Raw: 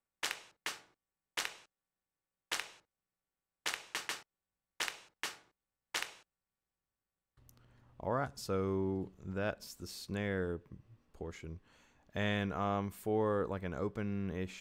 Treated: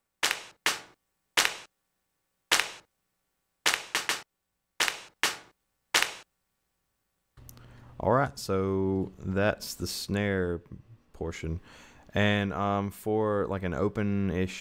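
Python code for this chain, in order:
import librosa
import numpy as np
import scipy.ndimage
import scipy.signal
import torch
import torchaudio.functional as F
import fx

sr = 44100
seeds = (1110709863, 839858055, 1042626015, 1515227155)

y = fx.rider(x, sr, range_db=5, speed_s=0.5)
y = y * librosa.db_to_amplitude(9.0)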